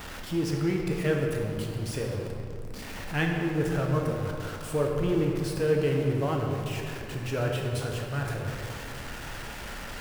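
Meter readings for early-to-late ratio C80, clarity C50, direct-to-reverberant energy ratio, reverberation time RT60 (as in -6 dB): 3.5 dB, 2.0 dB, 0.0 dB, 2.4 s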